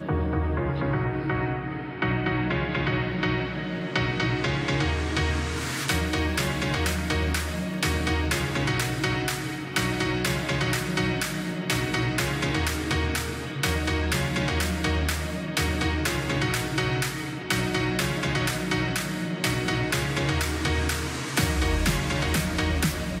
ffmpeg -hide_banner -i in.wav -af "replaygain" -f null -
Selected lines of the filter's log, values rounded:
track_gain = +8.6 dB
track_peak = 0.203